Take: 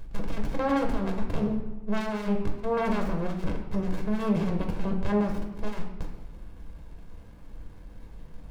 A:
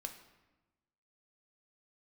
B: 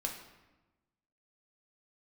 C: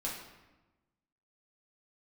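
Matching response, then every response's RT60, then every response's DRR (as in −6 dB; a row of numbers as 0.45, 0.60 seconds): B; 1.1, 1.1, 1.1 seconds; 5.5, 1.0, −4.5 decibels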